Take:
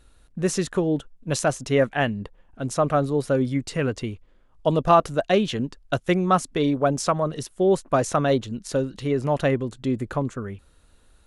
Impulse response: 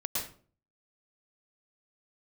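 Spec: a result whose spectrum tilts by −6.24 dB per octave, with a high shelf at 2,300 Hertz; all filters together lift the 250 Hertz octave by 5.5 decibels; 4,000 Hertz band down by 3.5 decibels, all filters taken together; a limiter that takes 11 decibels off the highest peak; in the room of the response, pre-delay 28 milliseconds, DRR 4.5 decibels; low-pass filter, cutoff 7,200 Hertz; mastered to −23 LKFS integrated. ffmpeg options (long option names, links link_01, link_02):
-filter_complex "[0:a]lowpass=7200,equalizer=frequency=250:width_type=o:gain=7,highshelf=frequency=2300:gain=4,equalizer=frequency=4000:width_type=o:gain=-8.5,alimiter=limit=-14.5dB:level=0:latency=1,asplit=2[link_01][link_02];[1:a]atrim=start_sample=2205,adelay=28[link_03];[link_02][link_03]afir=irnorm=-1:irlink=0,volume=-9dB[link_04];[link_01][link_04]amix=inputs=2:normalize=0,volume=0.5dB"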